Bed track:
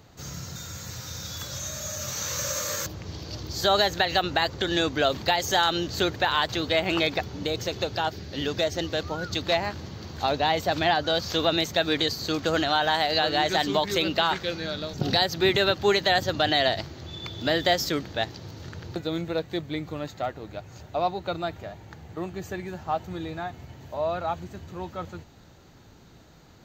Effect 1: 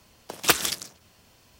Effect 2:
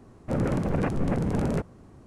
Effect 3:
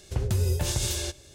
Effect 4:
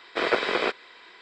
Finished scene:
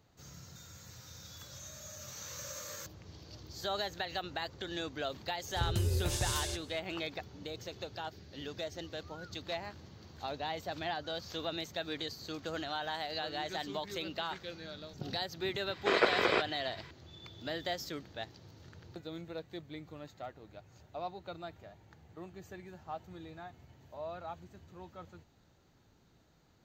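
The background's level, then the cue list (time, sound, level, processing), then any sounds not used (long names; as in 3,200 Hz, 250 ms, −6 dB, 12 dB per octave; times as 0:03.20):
bed track −14.5 dB
0:05.45: mix in 3 −6.5 dB
0:15.70: mix in 4 −4 dB
not used: 1, 2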